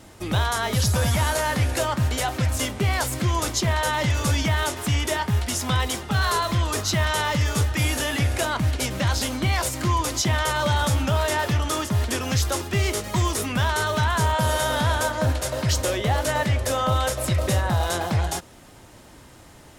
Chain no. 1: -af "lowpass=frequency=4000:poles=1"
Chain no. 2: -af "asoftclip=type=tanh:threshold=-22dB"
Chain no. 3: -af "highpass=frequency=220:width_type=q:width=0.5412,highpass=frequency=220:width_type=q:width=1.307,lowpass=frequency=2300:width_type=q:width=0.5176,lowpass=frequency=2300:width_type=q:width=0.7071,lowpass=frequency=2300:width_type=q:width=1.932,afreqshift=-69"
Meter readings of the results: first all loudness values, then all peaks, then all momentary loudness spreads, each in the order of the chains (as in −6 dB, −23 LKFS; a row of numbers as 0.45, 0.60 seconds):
−24.0, −27.0, −27.5 LKFS; −13.0, −22.0, −12.0 dBFS; 3, 2, 6 LU